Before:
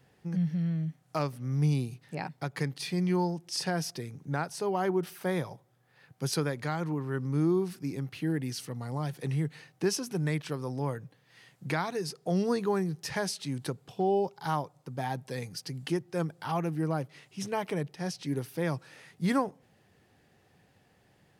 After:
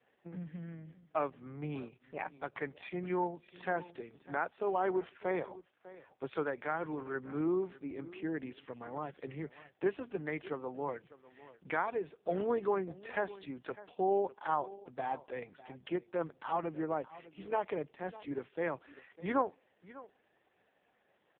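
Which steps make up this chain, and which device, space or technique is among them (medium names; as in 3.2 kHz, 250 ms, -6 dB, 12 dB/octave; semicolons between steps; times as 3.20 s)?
satellite phone (band-pass 370–3000 Hz; delay 601 ms -18 dB; AMR-NB 4.75 kbps 8 kHz)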